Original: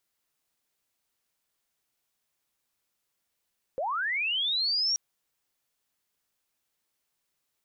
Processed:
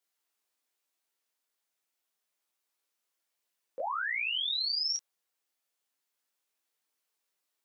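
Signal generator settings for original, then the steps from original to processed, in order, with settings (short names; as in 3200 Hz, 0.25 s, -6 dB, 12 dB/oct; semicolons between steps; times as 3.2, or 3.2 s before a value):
chirp linear 490 Hz -> 5700 Hz -27.5 dBFS -> -23.5 dBFS 1.18 s
HPF 300 Hz; detuned doubles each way 10 cents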